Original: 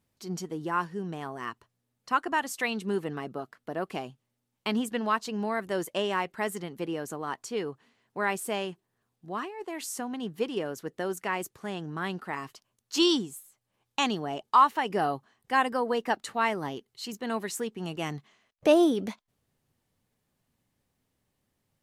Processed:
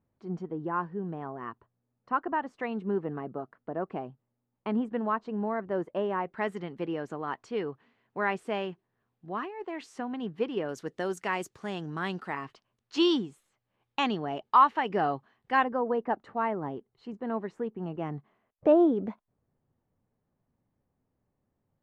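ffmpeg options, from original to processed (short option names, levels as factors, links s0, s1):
-af "asetnsamples=n=441:p=0,asendcmd='6.33 lowpass f 2600;10.69 lowpass f 6800;12.33 lowpass f 2900;15.64 lowpass f 1100',lowpass=1200"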